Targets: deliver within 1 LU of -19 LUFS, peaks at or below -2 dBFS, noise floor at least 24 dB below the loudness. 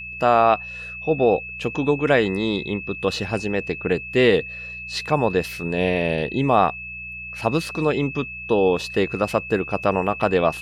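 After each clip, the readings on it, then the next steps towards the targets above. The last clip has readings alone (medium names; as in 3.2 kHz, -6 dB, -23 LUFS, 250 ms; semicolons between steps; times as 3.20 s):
hum 60 Hz; highest harmonic 180 Hz; hum level -42 dBFS; steady tone 2.6 kHz; tone level -32 dBFS; loudness -22.0 LUFS; peak level -4.0 dBFS; loudness target -19.0 LUFS
-> de-hum 60 Hz, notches 3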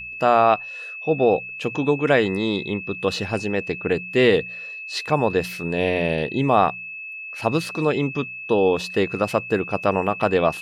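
hum not found; steady tone 2.6 kHz; tone level -32 dBFS
-> band-stop 2.6 kHz, Q 30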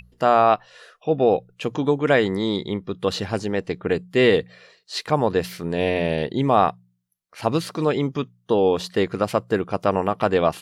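steady tone not found; loudness -22.0 LUFS; peak level -4.0 dBFS; loudness target -19.0 LUFS
-> trim +3 dB; peak limiter -2 dBFS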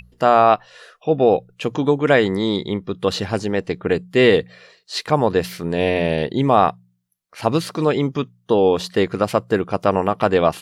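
loudness -19.0 LUFS; peak level -2.0 dBFS; noise floor -63 dBFS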